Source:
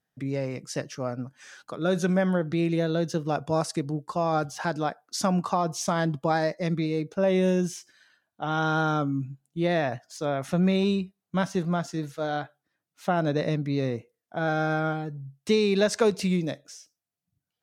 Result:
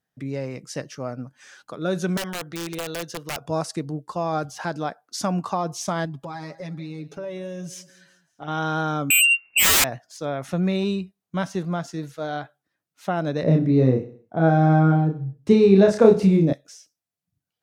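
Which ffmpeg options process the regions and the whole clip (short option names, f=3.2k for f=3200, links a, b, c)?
-filter_complex "[0:a]asettb=1/sr,asplit=3[a][b][c];[a]atrim=end=2.174[d];[b]atrim=start=2.17:end=3.45,asetpts=PTS-STARTPTS,afade=t=in:d=0.004:c=qsin,afade=t=out:st=1.276:d=0.004:c=qsin,highpass=f=170:p=1,equalizer=f=240:w=0.7:g=-7,aeval=exprs='(mod(13.3*val(0)+1,2)-1)/13.3':c=same[e];[c]atrim=start=3.446[f];[d][e]acrossfade=d=0.004:c1=hsin:c2=qsin[g];[g][f]acrossfade=d=0.004:c1=qsin:c2=hsin,asettb=1/sr,asplit=3[h][i][j];[h]atrim=end=6.054[k];[i]atrim=start=6.05:end=8.48,asetpts=PTS-STARTPTS,afade=t=in:d=0.004:c=qsin,afade=t=out:st=2.426:d=0.004:c=qsin,aecho=1:1:7.2:0.99,atrim=end_sample=107163,acompressor=threshold=-34dB:ratio=3:attack=3.2:release=140:knee=1:detection=peak,aecho=1:1:191|382|573:0.106|0.0466|0.0205,atrim=end_sample=107163[l];[j]atrim=start=8.476[m];[k][l]acrossfade=d=0.004:c1=hsin:c2=qsin[n];[n][m]acrossfade=d=0.004:c1=qsin:c2=hsin,asettb=1/sr,asplit=3[o][p][q];[o]atrim=end=9.104[r];[p]atrim=start=9.1:end=9.84,asetpts=PTS-STARTPTS,afade=t=in:d=0.004:c=qsin,afade=t=out:st=0.736:d=0.004:c=qsin,highpass=f=90:w=0.5412,highpass=f=90:w=1.3066,lowpass=f=2.5k:t=q:w=0.5098,lowpass=f=2.5k:t=q:w=0.6013,lowpass=f=2.5k:t=q:w=0.9,lowpass=f=2.5k:t=q:w=2.563,afreqshift=-2900,aeval=exprs='0.211*sin(PI/2*8.91*val(0)/0.211)':c=same[s];[q]atrim=start=9.836[t];[r][s]acrossfade=d=0.004:c1=hsin:c2=qsin[u];[u][t]acrossfade=d=0.004:c1=qsin:c2=hsin,asettb=1/sr,asplit=3[v][w][x];[v]atrim=end=13.434[y];[w]atrim=start=13.43:end=16.53,asetpts=PTS-STARTPTS,afade=t=in:d=0.004:c=qsin,afade=t=out:st=3.096:d=0.004:c=qsin,tiltshelf=f=1.3k:g=9,asplit=2[z][aa];[aa]adelay=31,volume=-3dB[ab];[z][ab]amix=inputs=2:normalize=0,atrim=end_sample=136710,aecho=1:1:64|128|192|256:0.168|0.0806|0.0387|0.0186,atrim=end_sample=136710[ac];[x]atrim=start=16.526[ad];[y][ac]acrossfade=d=0.004:c1=hsin:c2=qsin[ae];[ae][ad]acrossfade=d=0.004:c1=qsin:c2=hsin"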